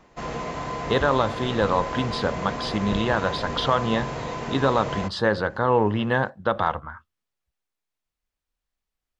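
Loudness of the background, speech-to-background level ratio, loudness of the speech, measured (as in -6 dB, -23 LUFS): -31.0 LUFS, 6.5 dB, -24.5 LUFS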